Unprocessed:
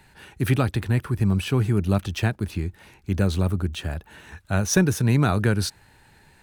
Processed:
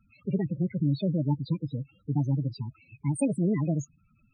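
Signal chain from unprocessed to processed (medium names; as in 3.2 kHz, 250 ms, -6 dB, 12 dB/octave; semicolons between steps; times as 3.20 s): wide varispeed 1.48×; dynamic bell 140 Hz, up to +4 dB, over -38 dBFS, Q 4.7; loudest bins only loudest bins 8; trim -6 dB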